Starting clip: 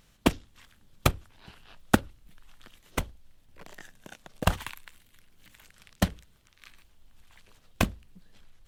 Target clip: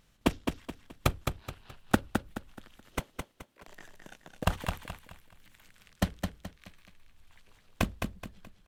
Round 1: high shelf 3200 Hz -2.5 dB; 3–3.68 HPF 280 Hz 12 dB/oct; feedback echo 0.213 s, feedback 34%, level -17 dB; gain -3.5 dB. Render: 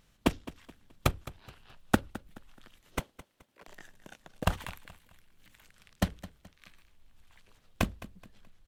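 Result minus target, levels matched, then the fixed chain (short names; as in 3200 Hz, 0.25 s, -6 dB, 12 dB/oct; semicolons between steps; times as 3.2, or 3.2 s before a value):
echo-to-direct -11.5 dB
high shelf 3200 Hz -2.5 dB; 3–3.68 HPF 280 Hz 12 dB/oct; feedback echo 0.213 s, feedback 34%, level -5.5 dB; gain -3.5 dB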